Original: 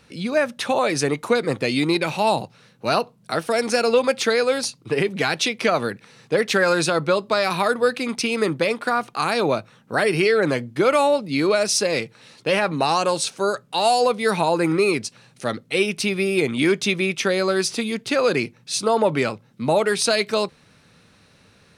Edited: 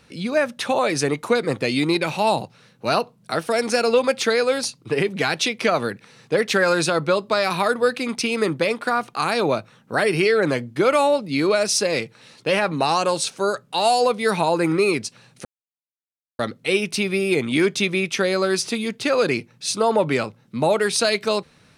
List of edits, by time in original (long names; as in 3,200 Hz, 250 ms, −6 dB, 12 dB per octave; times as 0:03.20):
0:15.45: splice in silence 0.94 s